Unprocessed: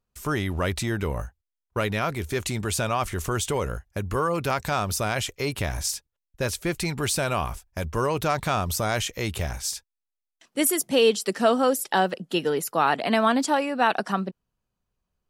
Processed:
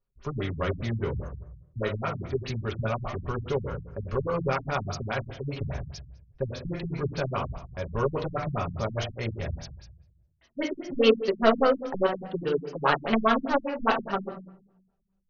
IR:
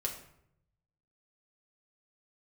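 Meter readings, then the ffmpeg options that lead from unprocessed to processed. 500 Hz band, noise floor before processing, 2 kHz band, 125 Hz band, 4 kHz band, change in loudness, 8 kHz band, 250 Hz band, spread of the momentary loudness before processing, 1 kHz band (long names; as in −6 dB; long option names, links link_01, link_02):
−1.5 dB, −85 dBFS, −5.0 dB, −1.5 dB, −7.0 dB, −3.5 dB, −22.0 dB, −3.0 dB, 9 LU, −4.5 dB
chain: -filter_complex "[0:a]aeval=exprs='0.501*(cos(1*acos(clip(val(0)/0.501,-1,1)))-cos(1*PI/2))+0.0708*(cos(3*acos(clip(val(0)/0.501,-1,1)))-cos(3*PI/2))+0.0126*(cos(7*acos(clip(val(0)/0.501,-1,1)))-cos(7*PI/2))':channel_layout=same[link_01];[1:a]atrim=start_sample=2205[link_02];[link_01][link_02]afir=irnorm=-1:irlink=0,afftfilt=real='re*lt(b*sr/1024,210*pow(6800/210,0.5+0.5*sin(2*PI*4.9*pts/sr)))':imag='im*lt(b*sr/1024,210*pow(6800/210,0.5+0.5*sin(2*PI*4.9*pts/sr)))':win_size=1024:overlap=0.75,volume=1.5dB"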